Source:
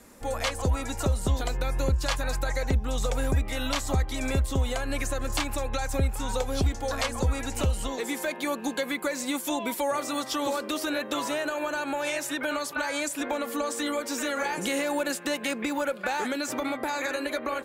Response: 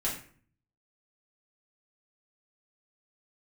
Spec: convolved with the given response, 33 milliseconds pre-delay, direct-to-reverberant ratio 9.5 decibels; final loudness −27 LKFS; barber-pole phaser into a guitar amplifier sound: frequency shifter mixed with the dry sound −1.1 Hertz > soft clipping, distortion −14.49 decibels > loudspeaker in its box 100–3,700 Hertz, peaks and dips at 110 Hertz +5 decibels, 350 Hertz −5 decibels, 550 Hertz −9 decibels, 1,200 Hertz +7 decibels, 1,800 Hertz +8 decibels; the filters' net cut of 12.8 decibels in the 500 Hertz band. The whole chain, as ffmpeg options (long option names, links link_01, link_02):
-filter_complex "[0:a]equalizer=frequency=500:width_type=o:gain=-7.5,asplit=2[link_01][link_02];[1:a]atrim=start_sample=2205,adelay=33[link_03];[link_02][link_03]afir=irnorm=-1:irlink=0,volume=-15.5dB[link_04];[link_01][link_04]amix=inputs=2:normalize=0,asplit=2[link_05][link_06];[link_06]afreqshift=-1.1[link_07];[link_05][link_07]amix=inputs=2:normalize=1,asoftclip=threshold=-23.5dB,highpass=100,equalizer=frequency=110:width_type=q:width=4:gain=5,equalizer=frequency=350:width_type=q:width=4:gain=-5,equalizer=frequency=550:width_type=q:width=4:gain=-9,equalizer=frequency=1200:width_type=q:width=4:gain=7,equalizer=frequency=1800:width_type=q:width=4:gain=8,lowpass=frequency=3700:width=0.5412,lowpass=frequency=3700:width=1.3066,volume=7dB"